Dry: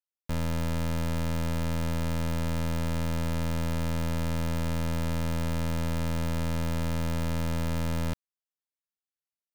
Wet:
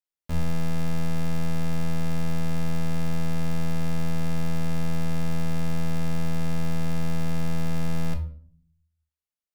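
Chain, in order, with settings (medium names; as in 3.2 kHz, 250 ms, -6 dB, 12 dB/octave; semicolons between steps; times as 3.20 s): peaking EQ 76 Hz +12.5 dB 0.2 oct; simulated room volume 580 m³, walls furnished, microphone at 1.4 m; trim -2.5 dB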